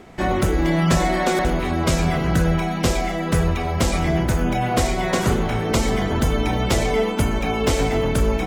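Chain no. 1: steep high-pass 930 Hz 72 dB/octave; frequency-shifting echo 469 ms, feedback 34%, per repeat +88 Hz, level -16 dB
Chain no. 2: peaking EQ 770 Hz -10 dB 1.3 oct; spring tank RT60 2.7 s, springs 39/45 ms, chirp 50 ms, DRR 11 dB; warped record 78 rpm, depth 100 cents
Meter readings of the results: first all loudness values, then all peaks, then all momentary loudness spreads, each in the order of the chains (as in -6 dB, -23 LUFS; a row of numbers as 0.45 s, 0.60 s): -28.0 LUFS, -22.5 LUFS; -11.0 dBFS, -8.5 dBFS; 4 LU, 2 LU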